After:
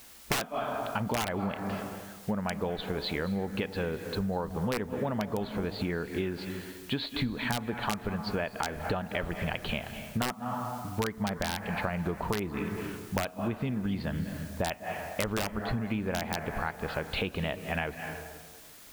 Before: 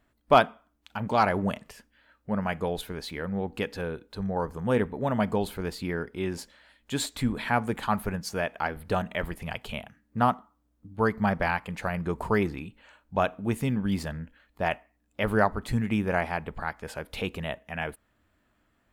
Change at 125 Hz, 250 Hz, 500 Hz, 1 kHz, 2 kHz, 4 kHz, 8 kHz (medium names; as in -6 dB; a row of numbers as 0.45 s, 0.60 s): -2.0 dB, -2.5 dB, -4.5 dB, -6.5 dB, -3.0 dB, +1.5 dB, +1.0 dB